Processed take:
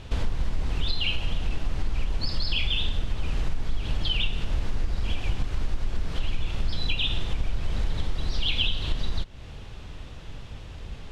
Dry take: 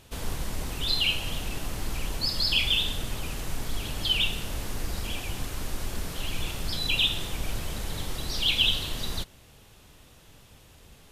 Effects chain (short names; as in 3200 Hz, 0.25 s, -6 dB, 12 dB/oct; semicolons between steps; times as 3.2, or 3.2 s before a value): LPF 4300 Hz 12 dB/oct; low shelf 98 Hz +11 dB; compressor 5:1, threshold -30 dBFS, peak gain reduction 15 dB; gain +8.5 dB